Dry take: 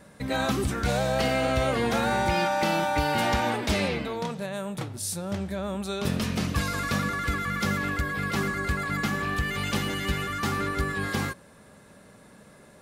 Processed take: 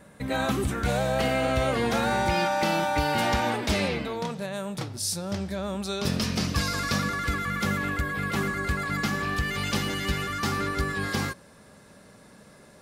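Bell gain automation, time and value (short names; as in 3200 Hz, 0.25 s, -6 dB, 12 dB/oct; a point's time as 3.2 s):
bell 5100 Hz 0.61 oct
1.34 s -5 dB
1.85 s +1.5 dB
4.32 s +1.5 dB
4.83 s +8.5 dB
6.9 s +8.5 dB
7.71 s -3 dB
8.39 s -3 dB
9.08 s +5 dB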